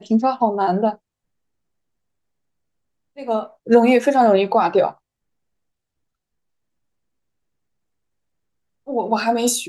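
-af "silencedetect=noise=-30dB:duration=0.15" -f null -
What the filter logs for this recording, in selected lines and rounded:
silence_start: 0.94
silence_end: 3.18 | silence_duration: 2.24
silence_start: 3.46
silence_end: 3.67 | silence_duration: 0.21
silence_start: 4.91
silence_end: 8.88 | silence_duration: 3.97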